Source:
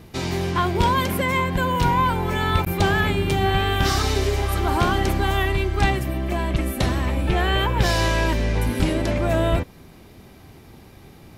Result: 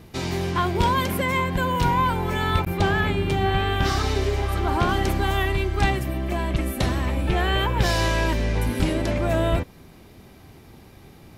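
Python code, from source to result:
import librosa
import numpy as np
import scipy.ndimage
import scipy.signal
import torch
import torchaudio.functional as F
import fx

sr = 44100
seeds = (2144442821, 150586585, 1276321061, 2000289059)

y = fx.high_shelf(x, sr, hz=5500.0, db=-8.0, at=(2.59, 4.89))
y = y * librosa.db_to_amplitude(-1.5)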